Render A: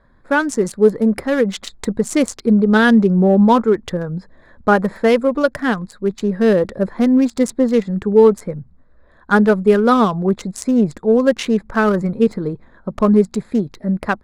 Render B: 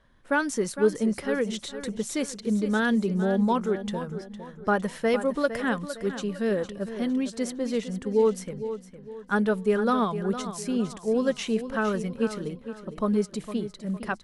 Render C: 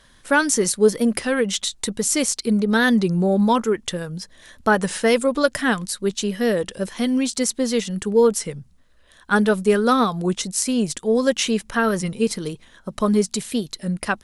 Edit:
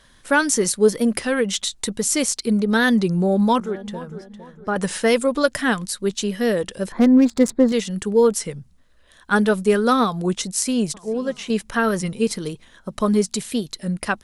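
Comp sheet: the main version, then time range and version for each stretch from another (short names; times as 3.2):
C
3.6–4.76 from B
6.92–7.72 from A
10.94–11.5 from B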